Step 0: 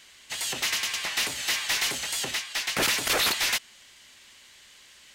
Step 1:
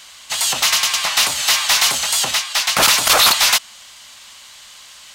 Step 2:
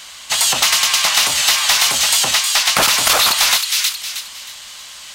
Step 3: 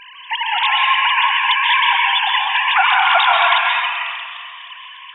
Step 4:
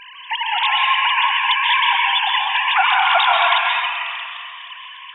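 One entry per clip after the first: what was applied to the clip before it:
FFT filter 190 Hz 0 dB, 390 Hz -6 dB, 630 Hz +5 dB, 1.2 kHz +9 dB, 1.8 kHz 0 dB, 4 kHz +6 dB; trim +7 dB
on a send: feedback echo behind a high-pass 315 ms, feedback 32%, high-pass 2.3 kHz, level -6.5 dB; on the sum: compression, threshold -16 dBFS, peak gain reduction 7.5 dB; trim +5 dB
formants replaced by sine waves; plate-style reverb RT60 1.9 s, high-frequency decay 0.45×, pre-delay 120 ms, DRR -1 dB; trim -3.5 dB
dynamic bell 1.6 kHz, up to -3 dB, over -25 dBFS, Q 0.99

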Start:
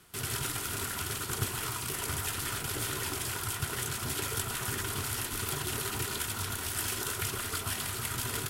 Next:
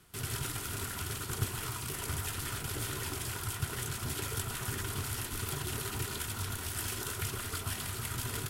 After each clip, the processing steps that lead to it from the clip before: bass shelf 180 Hz +6.5 dB; trim -4 dB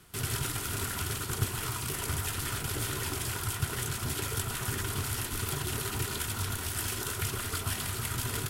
gain riding; trim +3.5 dB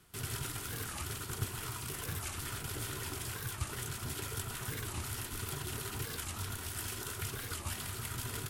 warped record 45 rpm, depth 250 cents; trim -6.5 dB

